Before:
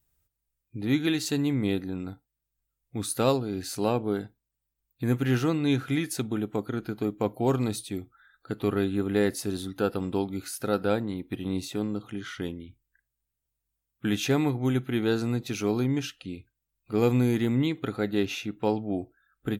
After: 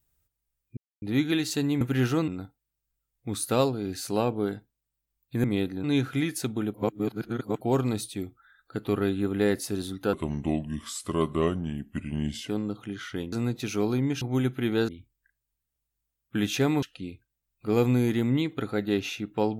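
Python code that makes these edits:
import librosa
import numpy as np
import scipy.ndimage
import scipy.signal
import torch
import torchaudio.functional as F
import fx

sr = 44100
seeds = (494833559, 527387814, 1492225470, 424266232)

y = fx.edit(x, sr, fx.insert_silence(at_s=0.77, length_s=0.25),
    fx.swap(start_s=1.56, length_s=0.4, other_s=5.12, other_length_s=0.47),
    fx.reverse_span(start_s=6.49, length_s=0.87),
    fx.speed_span(start_s=9.88, length_s=1.86, speed=0.79),
    fx.swap(start_s=12.58, length_s=1.94, other_s=15.19, other_length_s=0.89), tone=tone)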